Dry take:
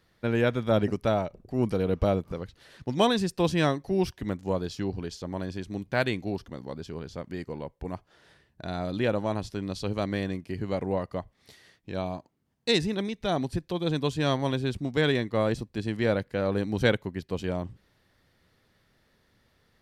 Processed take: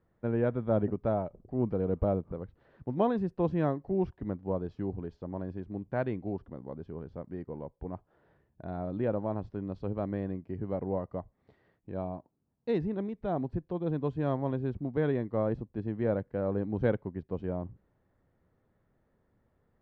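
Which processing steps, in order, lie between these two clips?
low-pass filter 1,000 Hz 12 dB per octave
level −3.5 dB

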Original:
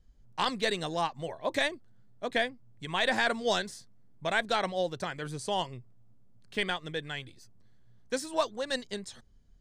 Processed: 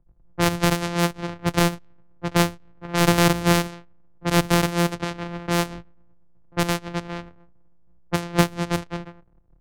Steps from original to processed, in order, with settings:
samples sorted by size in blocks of 256 samples
low-pass that shuts in the quiet parts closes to 910 Hz, open at −26.5 dBFS
multiband upward and downward expander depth 40%
level +9 dB

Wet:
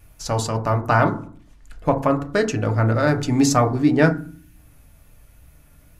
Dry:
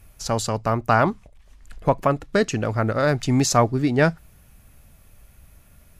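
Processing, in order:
feedback delay network reverb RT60 0.47 s, low-frequency decay 1.45×, high-frequency decay 0.3×, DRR 4.5 dB
tape wow and flutter 29 cents
gain on a spectral selection 0:04.13–0:04.56, 350–1,400 Hz −7 dB
level −1 dB

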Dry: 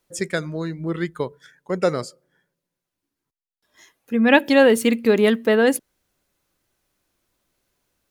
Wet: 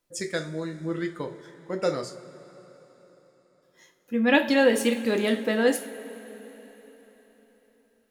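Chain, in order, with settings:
coupled-rooms reverb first 0.33 s, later 4.2 s, from −18 dB, DRR 3.5 dB
dynamic equaliser 5,200 Hz, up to +5 dB, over −38 dBFS, Q 0.98
level −7.5 dB

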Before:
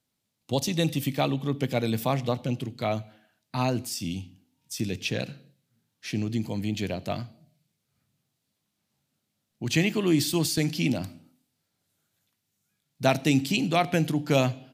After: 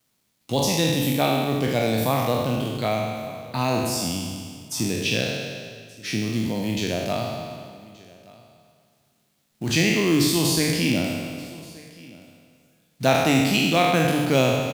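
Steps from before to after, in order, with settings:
peak hold with a decay on every bin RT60 1.47 s
mains-hum notches 50/100/150 Hz
in parallel at −2 dB: downward compressor, threshold −36 dBFS, peak gain reduction 20 dB
on the sum: log-companded quantiser 6 bits
on a send: single-tap delay 1,176 ms −22.5 dB
on the sum: spring reverb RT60 2.5 s, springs 45 ms, chirp 40 ms, DRR 15 dB

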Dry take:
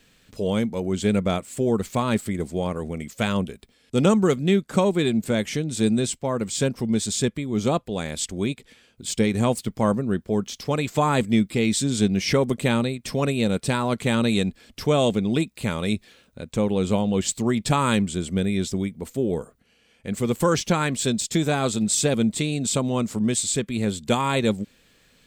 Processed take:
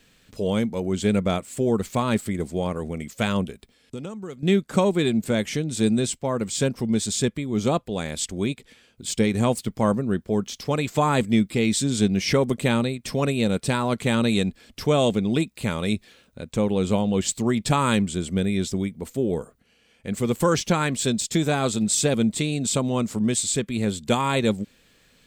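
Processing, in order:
0:03.50–0:04.43: downward compressor 4 to 1, threshold −35 dBFS, peak gain reduction 18.5 dB

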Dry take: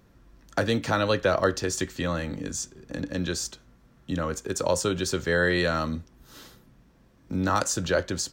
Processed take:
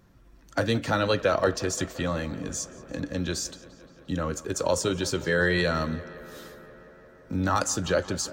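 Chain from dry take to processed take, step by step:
spectral magnitudes quantised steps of 15 dB
on a send: tape delay 174 ms, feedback 87%, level −17.5 dB, low-pass 4,000 Hz

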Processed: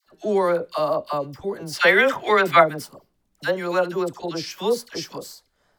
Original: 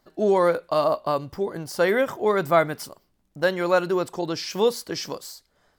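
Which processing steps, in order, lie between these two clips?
0:01.72–0:02.59: parametric band 2,500 Hz +14 dB 2.6 octaves
all-pass dispersion lows, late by 69 ms, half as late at 920 Hz
level −1 dB

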